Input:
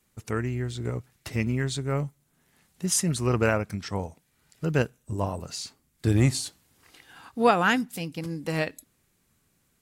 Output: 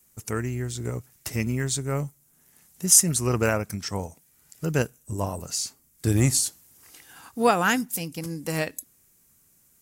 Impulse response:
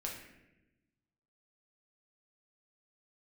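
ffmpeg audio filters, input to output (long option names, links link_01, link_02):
-af "aexciter=amount=4.4:drive=2.1:freq=5400"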